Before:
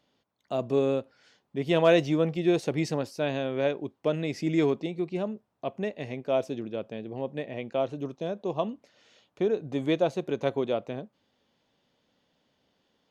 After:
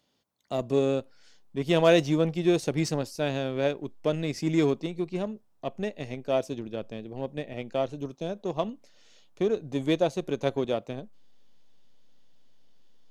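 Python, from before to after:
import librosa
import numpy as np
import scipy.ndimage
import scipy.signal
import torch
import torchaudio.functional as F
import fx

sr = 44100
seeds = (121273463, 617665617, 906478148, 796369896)

p1 = fx.bass_treble(x, sr, bass_db=2, treble_db=9)
p2 = fx.backlash(p1, sr, play_db=-23.5)
p3 = p1 + (p2 * librosa.db_to_amplitude(-6.0))
y = p3 * librosa.db_to_amplitude(-3.0)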